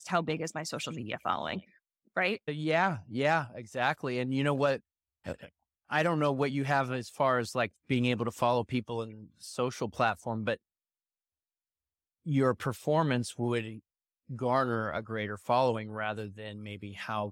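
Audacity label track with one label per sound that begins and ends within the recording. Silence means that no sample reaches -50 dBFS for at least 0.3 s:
2.160000	4.790000	sound
5.250000	5.480000	sound
5.900000	10.560000	sound
12.260000	13.790000	sound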